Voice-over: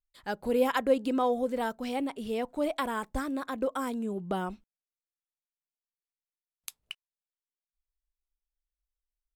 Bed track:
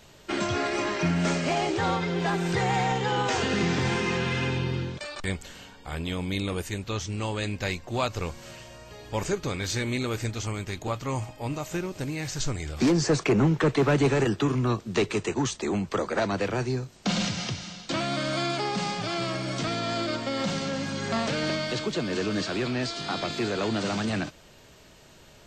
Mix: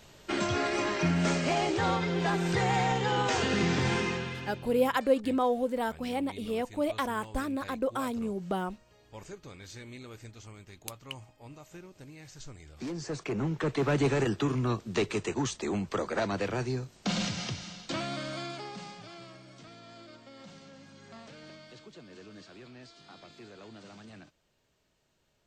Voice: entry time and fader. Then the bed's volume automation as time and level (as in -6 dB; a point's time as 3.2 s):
4.20 s, 0.0 dB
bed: 4 s -2 dB
4.6 s -17 dB
12.7 s -17 dB
14 s -4 dB
17.84 s -4 dB
19.51 s -21.5 dB